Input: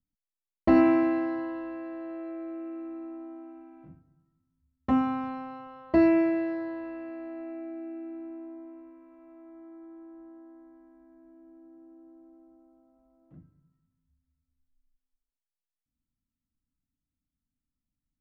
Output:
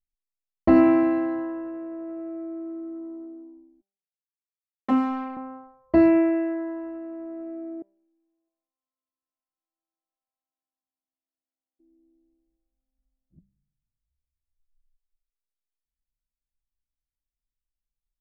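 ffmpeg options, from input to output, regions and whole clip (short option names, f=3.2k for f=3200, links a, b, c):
-filter_complex "[0:a]asettb=1/sr,asplit=3[a][b][c];[a]atrim=end=3.814[d];[b]atrim=start=3.81:end=5.37,asetpts=PTS-STARTPTS,afade=t=in:d=0.004:c=qsin,afade=t=out:st=1.556:d=0.004:c=qsin,highpass=f=200:w=0.5412,highpass=f=200:w=1.3066,highshelf=f=2.6k:g=8.5,aeval=exprs='sgn(val(0))*max(abs(val(0))-0.00668,0)':c=same[e];[c]atrim=start=5.366[f];[d][e]acrossfade=d=0.004:c1=hsin:c2=qsin[g];[g][f]acrossfade=d=0.004:c1=qsin:c2=hsin,asettb=1/sr,asplit=3[h][i][j];[h]atrim=end=7.824[k];[i]atrim=start=7.82:end=11.8,asetpts=PTS-STARTPTS,afade=t=in:d=0.004:c=qsin,afade=t=out:st=3.976:d=0.004:c=qsin,highpass=820,aecho=1:1:658:0.119,atrim=end_sample=175518[l];[j]atrim=start=11.796[m];[k][l]acrossfade=d=0.004:c1=hsin:c2=qsin[n];[n][m]acrossfade=d=0.004:c1=qsin:c2=hsin,anlmdn=1,highshelf=f=2.6k:g=-7.5,bandreject=f=196.6:t=h:w=4,bandreject=f=393.2:t=h:w=4,bandreject=f=589.8:t=h:w=4,bandreject=f=786.4:t=h:w=4,bandreject=f=983:t=h:w=4,bandreject=f=1.1796k:t=h:w=4,bandreject=f=1.3762k:t=h:w=4,bandreject=f=1.5728k:t=h:w=4,bandreject=f=1.7694k:t=h:w=4,bandreject=f=1.966k:t=h:w=4,bandreject=f=2.1626k:t=h:w=4,bandreject=f=2.3592k:t=h:w=4,bandreject=f=2.5558k:t=h:w=4,bandreject=f=2.7524k:t=h:w=4,bandreject=f=2.949k:t=h:w=4,bandreject=f=3.1456k:t=h:w=4,bandreject=f=3.3422k:t=h:w=4,bandreject=f=3.5388k:t=h:w=4,bandreject=f=3.7354k:t=h:w=4,bandreject=f=3.932k:t=h:w=4,bandreject=f=4.1286k:t=h:w=4,bandreject=f=4.3252k:t=h:w=4,bandreject=f=4.5218k:t=h:w=4,bandreject=f=4.7184k:t=h:w=4,bandreject=f=4.915k:t=h:w=4,bandreject=f=5.1116k:t=h:w=4,bandreject=f=5.3082k:t=h:w=4,bandreject=f=5.5048k:t=h:w=4,bandreject=f=5.7014k:t=h:w=4,bandreject=f=5.898k:t=h:w=4,bandreject=f=6.0946k:t=h:w=4,volume=4dB"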